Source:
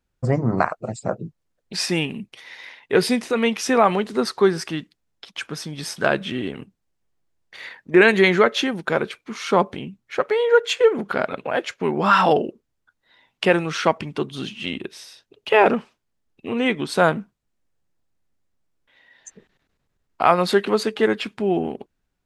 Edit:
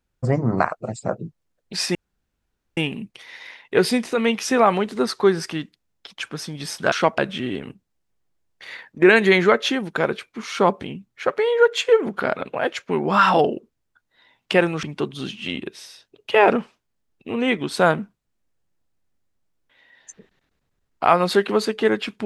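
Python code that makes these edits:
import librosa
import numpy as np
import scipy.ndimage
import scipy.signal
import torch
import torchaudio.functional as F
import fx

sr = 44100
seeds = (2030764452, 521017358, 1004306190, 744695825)

y = fx.edit(x, sr, fx.insert_room_tone(at_s=1.95, length_s=0.82),
    fx.move(start_s=13.75, length_s=0.26, to_s=6.1), tone=tone)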